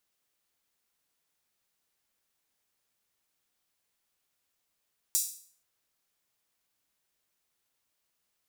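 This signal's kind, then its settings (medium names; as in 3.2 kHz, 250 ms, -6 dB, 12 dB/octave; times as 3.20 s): open hi-hat length 0.48 s, high-pass 6.6 kHz, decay 0.50 s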